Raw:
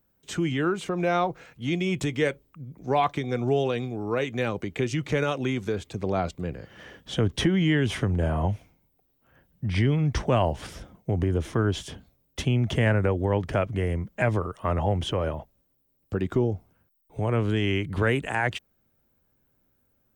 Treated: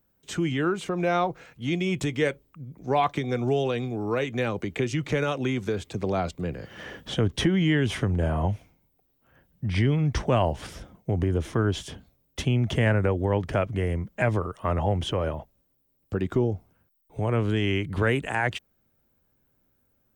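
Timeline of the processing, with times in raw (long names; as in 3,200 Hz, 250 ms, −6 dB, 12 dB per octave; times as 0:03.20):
0:03.15–0:07.15: multiband upward and downward compressor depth 40%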